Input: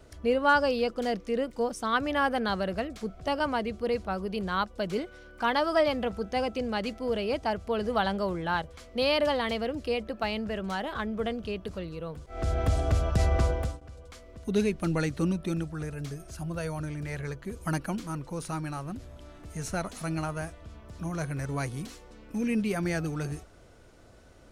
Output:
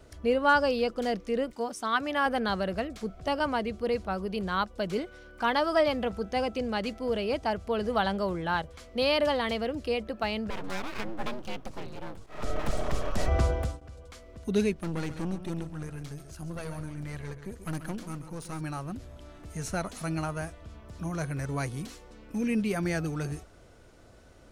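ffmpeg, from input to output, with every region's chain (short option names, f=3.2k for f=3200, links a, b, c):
-filter_complex "[0:a]asettb=1/sr,asplit=3[a][b][c];[a]atrim=end=1.534[d];[b]atrim=start=1.53:end=2.26,asetpts=PTS-STARTPTS,afade=t=in:d=0.004:c=qsin,afade=t=out:st=0.726:d=0.004:c=qsin,highpass=f=270:p=1,bandreject=f=500:w=7.9[e];[c]atrim=start=2.256[f];[d][e]acrossfade=d=0.004:c1=hsin:c2=qsin[g];[g][f]acrossfade=d=0.004:c1=qsin:c2=hsin,asettb=1/sr,asplit=3[h][i][j];[h]atrim=end=10.504[k];[i]atrim=start=10.5:end=13.28,asetpts=PTS-STARTPTS,afade=t=in:d=0.004:c=qsin,afade=t=out:st=2.776:d=0.004:c=qsin,afreqshift=-52,aeval=exprs='abs(val(0))':c=same[l];[j]atrim=start=13.276[m];[k][l]acrossfade=d=0.004:c1=hsin:c2=qsin[n];[n][m]acrossfade=d=0.004:c1=qsin:c2=hsin,asettb=1/sr,asplit=3[o][p][q];[o]atrim=end=14.734[r];[p]atrim=start=14.73:end=18.61,asetpts=PTS-STARTPTS,afade=t=in:d=0.004:c=qsin,afade=t=out:st=3.876:d=0.004:c=qsin,aeval=exprs='(tanh(28.2*val(0)+0.7)-tanh(0.7))/28.2':c=same,aecho=1:1:135:0.282,atrim=end_sample=171108[s];[q]atrim=start=18.606[t];[r][s]acrossfade=d=0.004:c1=hsin:c2=qsin[u];[u][t]acrossfade=d=0.004:c1=qsin:c2=hsin"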